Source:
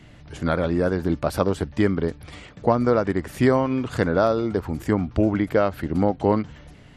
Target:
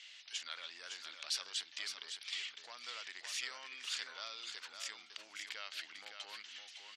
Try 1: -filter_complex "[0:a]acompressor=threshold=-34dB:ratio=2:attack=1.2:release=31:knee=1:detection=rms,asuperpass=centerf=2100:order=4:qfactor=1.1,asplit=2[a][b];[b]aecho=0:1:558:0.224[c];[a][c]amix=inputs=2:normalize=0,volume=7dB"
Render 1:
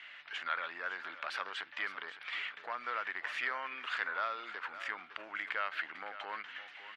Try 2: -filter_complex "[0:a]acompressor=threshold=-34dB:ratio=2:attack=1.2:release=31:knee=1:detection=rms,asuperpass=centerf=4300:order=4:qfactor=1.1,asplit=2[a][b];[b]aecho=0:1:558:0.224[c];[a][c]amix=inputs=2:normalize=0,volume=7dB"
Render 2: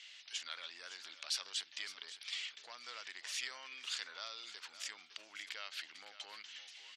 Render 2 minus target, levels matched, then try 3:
echo-to-direct -6.5 dB
-filter_complex "[0:a]acompressor=threshold=-34dB:ratio=2:attack=1.2:release=31:knee=1:detection=rms,asuperpass=centerf=4300:order=4:qfactor=1.1,asplit=2[a][b];[b]aecho=0:1:558:0.473[c];[a][c]amix=inputs=2:normalize=0,volume=7dB"

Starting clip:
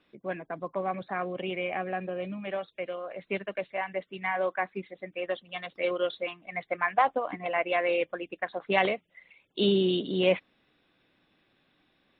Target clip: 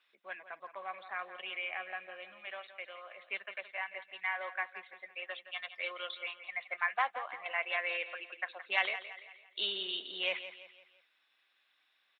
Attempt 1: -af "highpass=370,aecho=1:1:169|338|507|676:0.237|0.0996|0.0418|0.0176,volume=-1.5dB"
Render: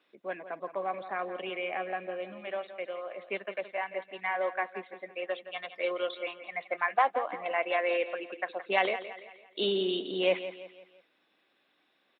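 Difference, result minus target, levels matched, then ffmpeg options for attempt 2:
500 Hz band +9.5 dB
-af "highpass=1.3k,aecho=1:1:169|338|507|676:0.237|0.0996|0.0418|0.0176,volume=-1.5dB"

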